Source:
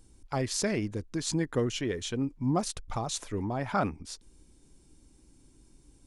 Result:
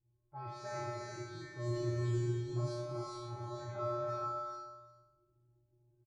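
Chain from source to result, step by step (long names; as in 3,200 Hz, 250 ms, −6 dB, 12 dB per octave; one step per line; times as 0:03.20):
peak hold with a decay on every bin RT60 0.66 s
0:01.67–0:02.26: spectral tilt −4 dB per octave
tuned comb filter 120 Hz, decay 1.4 s, harmonics odd, mix 100%
hum removal 60.23 Hz, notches 7
in parallel at −1 dB: brickwall limiter −42 dBFS, peak gain reduction 11 dB
on the sum: low-pass that shuts in the quiet parts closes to 590 Hz, open at −35.5 dBFS
notch comb filter 250 Hz
on a send: single-tap delay 349 ms −17 dB
on the sum: reverb whose tail is shaped and stops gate 470 ms rising, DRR −0.5 dB
level +2 dB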